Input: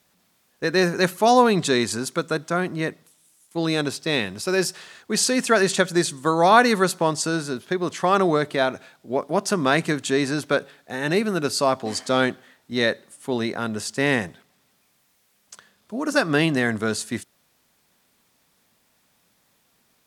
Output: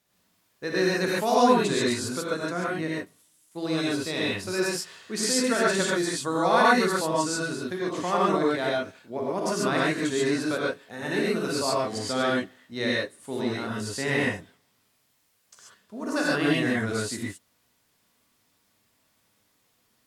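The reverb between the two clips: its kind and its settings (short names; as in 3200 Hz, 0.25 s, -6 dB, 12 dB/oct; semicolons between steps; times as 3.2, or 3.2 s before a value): non-linear reverb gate 0.16 s rising, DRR -5 dB; gain -10 dB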